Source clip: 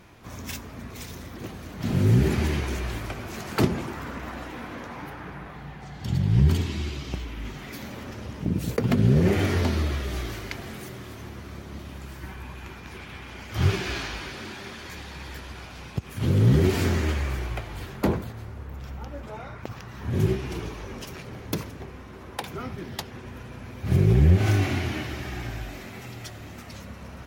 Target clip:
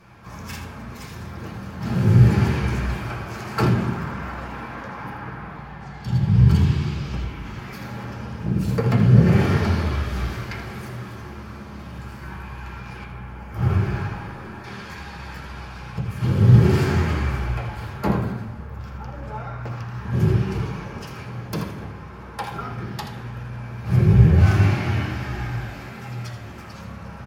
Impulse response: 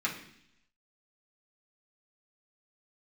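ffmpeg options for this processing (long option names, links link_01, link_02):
-filter_complex "[0:a]asettb=1/sr,asplit=3[link_01][link_02][link_03];[link_01]atrim=end=13.044[link_04];[link_02]atrim=start=13.04:end=14.64,asetpts=PTS-STARTPTS,afade=type=in:duration=0.004:curve=qsin,afade=type=out:start_time=1.596:duration=0.004:curve=qsin,equalizer=frequency=4400:width=0.51:gain=-14[link_05];[link_03]atrim=start=14.636[link_06];[link_04][link_05]acrossfade=duration=0.004:curve1=hsin:curve2=qsin[link_07];[link_07][link_06]acrossfade=duration=0.004:curve1=qsin:curve2=hsin,aecho=1:1:81:0.299[link_08];[1:a]atrim=start_sample=2205,asetrate=28665,aresample=44100[link_09];[link_08][link_09]afir=irnorm=-1:irlink=0,volume=-6dB"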